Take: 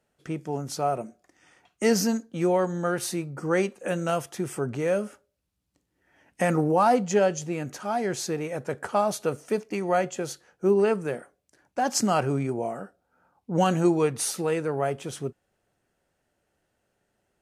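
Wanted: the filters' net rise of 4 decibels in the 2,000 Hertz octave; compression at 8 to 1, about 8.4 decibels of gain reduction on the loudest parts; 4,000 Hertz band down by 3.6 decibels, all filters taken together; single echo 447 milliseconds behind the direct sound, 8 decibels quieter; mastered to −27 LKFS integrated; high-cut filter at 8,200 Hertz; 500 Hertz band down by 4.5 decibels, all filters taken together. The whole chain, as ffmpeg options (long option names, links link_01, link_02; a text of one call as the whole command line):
ffmpeg -i in.wav -af "lowpass=8200,equalizer=frequency=500:width_type=o:gain=-6,equalizer=frequency=2000:width_type=o:gain=7,equalizer=frequency=4000:width_type=o:gain=-7,acompressor=threshold=-27dB:ratio=8,aecho=1:1:447:0.398,volume=6dB" out.wav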